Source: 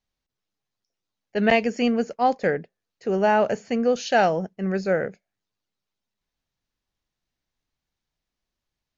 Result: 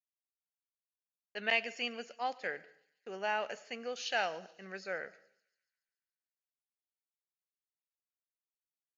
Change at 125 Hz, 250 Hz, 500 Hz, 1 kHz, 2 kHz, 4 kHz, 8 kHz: −27.5 dB, −25.5 dB, −18.0 dB, −14.5 dB, −8.0 dB, −4.5 dB, can't be measured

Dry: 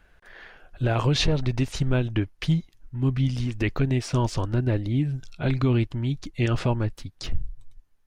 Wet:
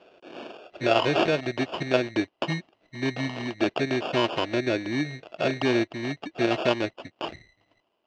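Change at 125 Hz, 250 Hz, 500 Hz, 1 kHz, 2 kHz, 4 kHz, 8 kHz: −12.5, −1.0, +5.0, +5.0, +5.5, +1.5, −6.0 decibels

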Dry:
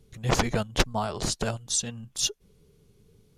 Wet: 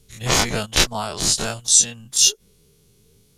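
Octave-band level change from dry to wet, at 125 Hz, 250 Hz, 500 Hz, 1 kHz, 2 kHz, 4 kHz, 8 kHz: +1.5, +2.0, +3.0, +4.0, +8.0, +11.5, +14.0 decibels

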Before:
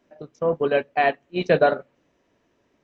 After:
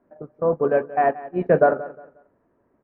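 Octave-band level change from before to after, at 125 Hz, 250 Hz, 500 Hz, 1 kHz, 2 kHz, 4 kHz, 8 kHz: +1.5 dB, +1.5 dB, +1.5 dB, +1.5 dB, −4.0 dB, below −20 dB, can't be measured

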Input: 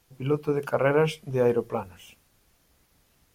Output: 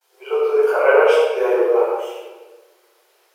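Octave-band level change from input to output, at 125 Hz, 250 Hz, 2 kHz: below −40 dB, 0.0 dB, +11.5 dB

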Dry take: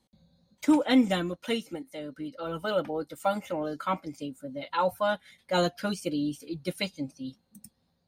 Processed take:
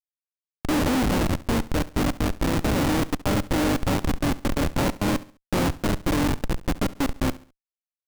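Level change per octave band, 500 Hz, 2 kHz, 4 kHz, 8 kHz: +1.5, +6.0, +4.0, +12.0 decibels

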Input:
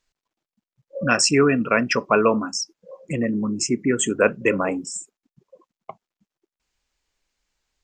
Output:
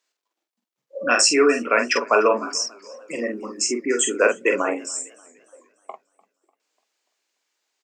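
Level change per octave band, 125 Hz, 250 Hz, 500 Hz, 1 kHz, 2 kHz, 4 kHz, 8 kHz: below −20 dB, −5.0 dB, +1.0 dB, +1.5 dB, +1.5 dB, +2.5 dB, +3.0 dB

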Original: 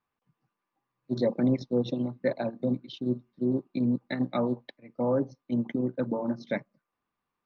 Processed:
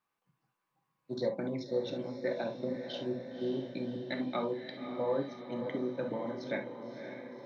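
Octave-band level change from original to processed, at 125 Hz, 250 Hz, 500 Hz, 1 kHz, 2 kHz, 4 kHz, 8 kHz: −11.0 dB, −9.5 dB, −3.5 dB, −3.0 dB, −2.0 dB, 0.0 dB, can't be measured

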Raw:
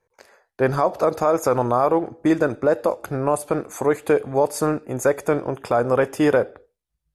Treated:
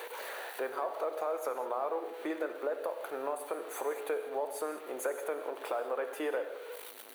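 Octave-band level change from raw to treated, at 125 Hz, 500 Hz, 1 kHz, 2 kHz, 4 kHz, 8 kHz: below −40 dB, −14.5 dB, −14.0 dB, −12.5 dB, −8.5 dB, −12.5 dB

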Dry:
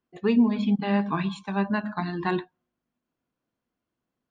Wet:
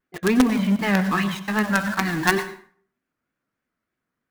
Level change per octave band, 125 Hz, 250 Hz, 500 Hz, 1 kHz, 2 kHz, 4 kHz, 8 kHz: +4.0 dB, +3.0 dB, +3.0 dB, +5.0 dB, +11.5 dB, +9.0 dB, can't be measured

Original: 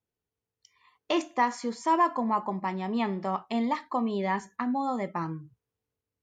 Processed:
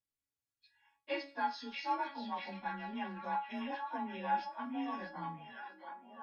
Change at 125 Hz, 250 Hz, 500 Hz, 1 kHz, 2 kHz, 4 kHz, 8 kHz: below −10 dB, −13.0 dB, −13.0 dB, −9.0 dB, −6.0 dB, −6.5 dB, below −20 dB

